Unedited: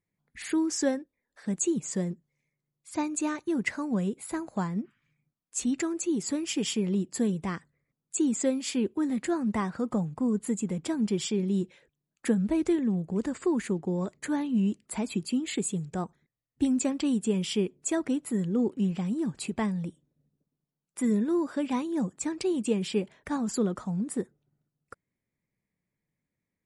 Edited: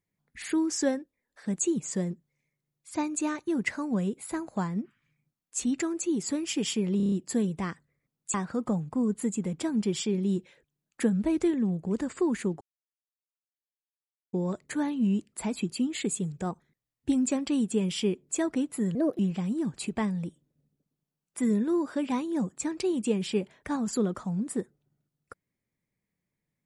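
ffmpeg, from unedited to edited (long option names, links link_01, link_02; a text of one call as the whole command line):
ffmpeg -i in.wav -filter_complex "[0:a]asplit=10[link_01][link_02][link_03][link_04][link_05][link_06][link_07][link_08][link_09][link_10];[link_01]atrim=end=7.002[link_11];[link_02]atrim=start=6.968:end=7.002[link_12];[link_03]atrim=start=6.968:end=7.002[link_13];[link_04]atrim=start=6.968:end=7.002[link_14];[link_05]atrim=start=6.968:end=7.002[link_15];[link_06]atrim=start=6.968:end=8.192[link_16];[link_07]atrim=start=9.588:end=13.86,asetpts=PTS-STARTPTS,afade=type=out:start_time=4.268:duration=0.004:curve=hsin,apad=pad_dur=1.72[link_17];[link_08]atrim=start=13.86:end=18.484,asetpts=PTS-STARTPTS,afade=type=in:duration=0.004:curve=hsin[link_18];[link_09]atrim=start=18.48:end=18.8,asetpts=PTS-STARTPTS,asetrate=58212,aresample=44100[link_19];[link_10]atrim=start=18.796[link_20];[link_11][link_12]acrossfade=duration=0.004:curve1=hsin:curve2=hsin[link_21];[link_21][link_13]acrossfade=duration=0.004:curve1=hsin:curve2=hsin[link_22];[link_22][link_14]acrossfade=duration=0.004:curve1=hsin:curve2=hsin[link_23];[link_23][link_15]acrossfade=duration=0.004:curve1=hsin:curve2=hsin[link_24];[link_24][link_16]acrossfade=duration=0.004:curve1=hsin:curve2=hsin[link_25];[link_17][link_18]concat=n=2:v=0:a=1[link_26];[link_25][link_26]acrossfade=duration=0.004:curve1=hsin:curve2=hsin[link_27];[link_27][link_19]acrossfade=duration=0.004:curve1=hsin:curve2=hsin[link_28];[link_28][link_20]acrossfade=duration=0.004:curve1=hsin:curve2=hsin" out.wav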